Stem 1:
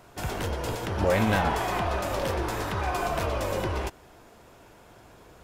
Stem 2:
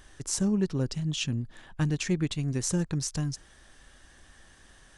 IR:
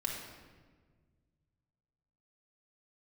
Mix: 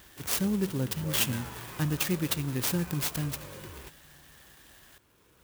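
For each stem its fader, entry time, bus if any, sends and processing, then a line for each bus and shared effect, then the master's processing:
-7.5 dB, 0.00 s, no send, peaking EQ 710 Hz -12 dB 0.46 oct; auto duck -8 dB, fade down 0.25 s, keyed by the second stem
-3.0 dB, 0.00 s, send -18 dB, none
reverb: on, RT60 1.5 s, pre-delay 4 ms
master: high-pass 53 Hz; peaking EQ 3.8 kHz +10.5 dB 1.4 oct; sampling jitter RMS 0.058 ms

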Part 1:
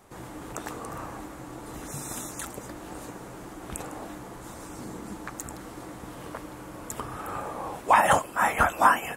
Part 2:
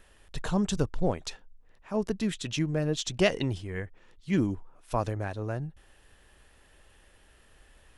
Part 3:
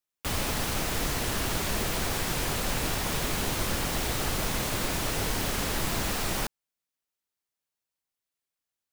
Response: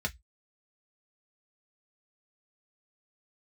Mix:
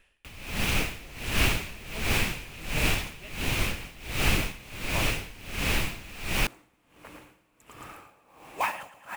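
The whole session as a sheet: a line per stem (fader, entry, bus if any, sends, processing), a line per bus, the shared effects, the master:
-9.0 dB, 0.70 s, no send, echo send -7.5 dB, modulation noise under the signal 14 dB
-8.5 dB, 0.00 s, no send, no echo send, none
+2.5 dB, 0.00 s, no send, no echo send, bass shelf 210 Hz +7.5 dB; random flutter of the level, depth 55%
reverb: none
echo: feedback delay 112 ms, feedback 53%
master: peaking EQ 2.5 kHz +13.5 dB 0.67 oct; logarithmic tremolo 1.4 Hz, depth 21 dB

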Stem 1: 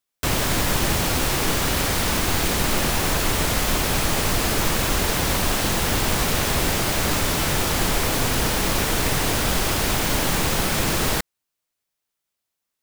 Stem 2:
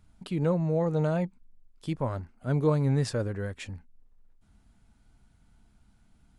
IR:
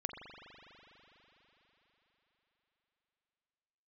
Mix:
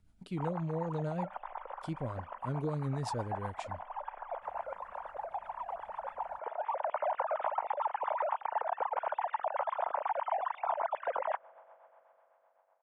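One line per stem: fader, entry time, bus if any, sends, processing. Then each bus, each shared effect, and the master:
-7.5 dB, 0.15 s, send -23 dB, formants replaced by sine waves; resonant low-pass 910 Hz, resonance Q 4.4; auto duck -18 dB, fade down 0.65 s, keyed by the second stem
-5.5 dB, 0.00 s, no send, none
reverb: on, RT60 4.4 s, pre-delay 41 ms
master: rotary cabinet horn 8 Hz; compression 6:1, threshold -30 dBFS, peak gain reduction 12.5 dB

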